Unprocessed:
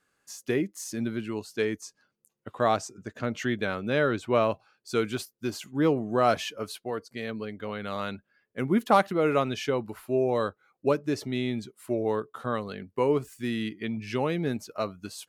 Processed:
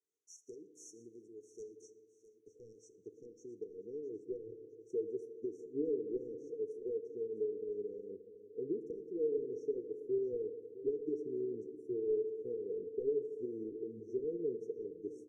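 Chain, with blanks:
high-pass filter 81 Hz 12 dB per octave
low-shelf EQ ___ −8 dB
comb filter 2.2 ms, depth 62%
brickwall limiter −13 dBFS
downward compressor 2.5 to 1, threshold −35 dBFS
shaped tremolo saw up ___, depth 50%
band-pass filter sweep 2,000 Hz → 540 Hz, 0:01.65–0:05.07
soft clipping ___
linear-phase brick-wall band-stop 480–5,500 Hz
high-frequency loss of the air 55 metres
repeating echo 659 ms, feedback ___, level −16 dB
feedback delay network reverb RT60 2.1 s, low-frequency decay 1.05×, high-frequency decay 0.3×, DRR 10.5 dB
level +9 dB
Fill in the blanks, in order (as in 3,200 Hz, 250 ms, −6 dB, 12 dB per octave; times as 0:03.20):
140 Hz, 5.5 Hz, −35.5 dBFS, 37%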